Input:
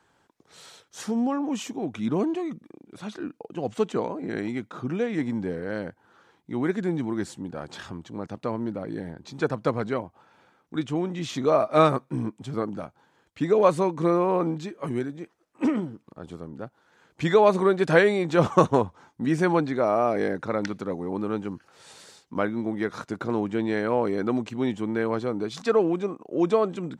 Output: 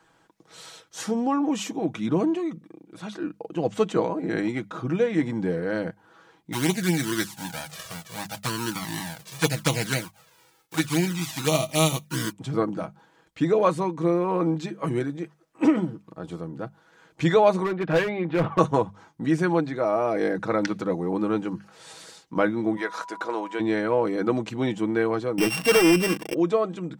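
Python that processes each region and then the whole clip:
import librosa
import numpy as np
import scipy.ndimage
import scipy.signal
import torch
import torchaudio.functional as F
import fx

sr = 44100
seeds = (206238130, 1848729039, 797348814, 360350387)

y = fx.envelope_flatten(x, sr, power=0.3, at=(6.52, 12.31), fade=0.02)
y = fx.env_flanger(y, sr, rest_ms=2.4, full_db=-20.0, at=(6.52, 12.31), fade=0.02)
y = fx.chain(y, sr, fx.lowpass(hz=2900.0, slope=24),
    fx.clip_hard(threshold_db=-16.5), at=(17.64, 18.59))
y = fx.highpass(y, sr, hz=570.0, slope=12, at=(22.76, 23.59), fade=0.02)
y = fx.dmg_tone(y, sr, hz=980.0, level_db=-44.0, at=(22.76, 23.59), fade=0.02)
y = fx.chain(y, sr, fx.sample_sort(block=16),
    fx.leveller(passes=3), at=(25.38, 26.34))
y = fx.hum_notches(y, sr, base_hz=50, count=4)
y = y + 0.49 * np.pad(y, (int(6.2 * sr / 1000.0), 0))[:len(y)]
y = fx.rider(y, sr, range_db=3, speed_s=0.5)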